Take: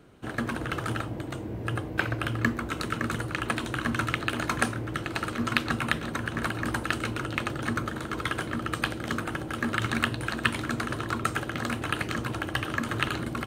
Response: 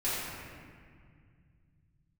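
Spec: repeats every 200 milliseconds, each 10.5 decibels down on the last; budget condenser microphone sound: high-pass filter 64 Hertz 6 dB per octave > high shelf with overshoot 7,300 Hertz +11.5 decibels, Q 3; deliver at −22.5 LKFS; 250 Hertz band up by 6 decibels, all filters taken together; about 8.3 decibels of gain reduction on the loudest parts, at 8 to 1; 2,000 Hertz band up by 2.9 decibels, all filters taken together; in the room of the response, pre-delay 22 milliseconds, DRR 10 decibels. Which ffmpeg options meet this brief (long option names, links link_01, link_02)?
-filter_complex "[0:a]equalizer=frequency=250:width_type=o:gain=7.5,equalizer=frequency=2000:width_type=o:gain=4.5,acompressor=threshold=-25dB:ratio=8,aecho=1:1:200|400|600:0.299|0.0896|0.0269,asplit=2[link_01][link_02];[1:a]atrim=start_sample=2205,adelay=22[link_03];[link_02][link_03]afir=irnorm=-1:irlink=0,volume=-18.5dB[link_04];[link_01][link_04]amix=inputs=2:normalize=0,highpass=frequency=64:poles=1,highshelf=frequency=7300:width_type=q:width=3:gain=11.5,volume=6.5dB"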